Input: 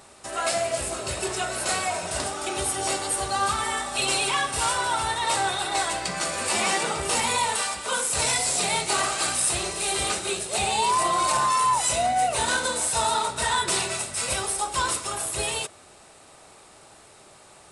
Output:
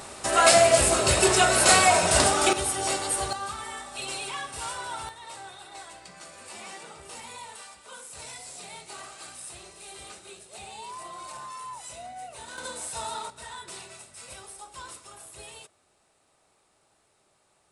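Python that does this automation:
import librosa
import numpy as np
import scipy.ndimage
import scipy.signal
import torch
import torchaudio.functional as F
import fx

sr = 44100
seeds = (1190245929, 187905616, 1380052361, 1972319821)

y = fx.gain(x, sr, db=fx.steps((0.0, 8.5), (2.53, -1.0), (3.33, -10.0), (5.09, -18.0), (12.58, -10.5), (13.3, -17.0)))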